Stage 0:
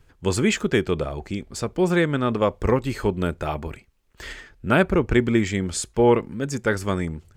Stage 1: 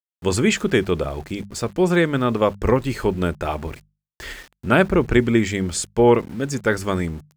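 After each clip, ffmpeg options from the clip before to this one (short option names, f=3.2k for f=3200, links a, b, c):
-af "aeval=exprs='val(0)*gte(abs(val(0)),0.0075)':c=same,bandreject=f=50:t=h:w=6,bandreject=f=100:t=h:w=6,bandreject=f=150:t=h:w=6,bandreject=f=200:t=h:w=6,volume=2.5dB"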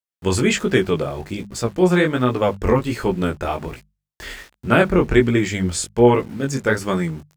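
-af "flanger=delay=15.5:depth=6.9:speed=1.3,volume=4dB"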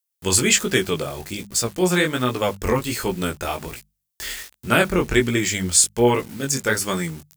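-af "crystalizer=i=5:c=0,volume=-4.5dB"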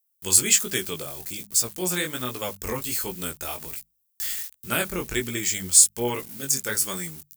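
-af "aemphasis=mode=production:type=75kf,volume=-10.5dB"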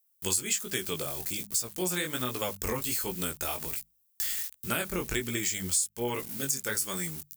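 -af "acompressor=threshold=-30dB:ratio=4,volume=2dB"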